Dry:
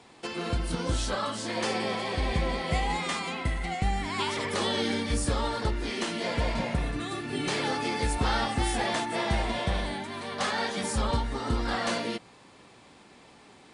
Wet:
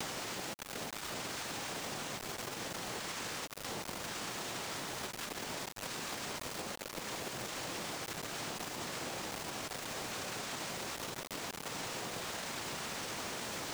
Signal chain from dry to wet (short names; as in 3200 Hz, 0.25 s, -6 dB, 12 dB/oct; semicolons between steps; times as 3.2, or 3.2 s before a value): infinite clipping; HPF 1300 Hz 6 dB/oct; noise vocoder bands 2; requantised 6-bit, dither none; limiter -32.5 dBFS, peak gain reduction 12 dB; high shelf 2000 Hz -9 dB; compressor, threshold -48 dBFS, peak gain reduction 7.5 dB; gain +10.5 dB